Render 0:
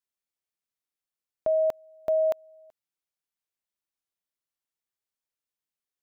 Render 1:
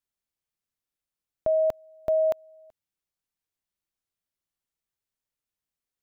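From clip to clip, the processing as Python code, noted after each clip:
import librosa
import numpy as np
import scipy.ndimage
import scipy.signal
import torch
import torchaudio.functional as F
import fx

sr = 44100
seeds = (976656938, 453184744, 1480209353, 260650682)

y = fx.low_shelf(x, sr, hz=180.0, db=10.5)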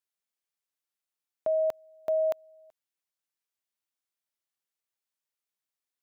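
y = fx.highpass(x, sr, hz=560.0, slope=6)
y = y * librosa.db_to_amplitude(-1.0)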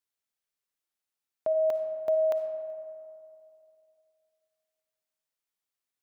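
y = fx.rev_freeverb(x, sr, rt60_s=2.6, hf_ratio=0.4, predelay_ms=15, drr_db=7.0)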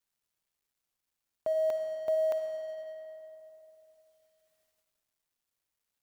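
y = fx.law_mismatch(x, sr, coded='mu')
y = fx.low_shelf(y, sr, hz=97.0, db=5.5)
y = y * librosa.db_to_amplitude(-4.0)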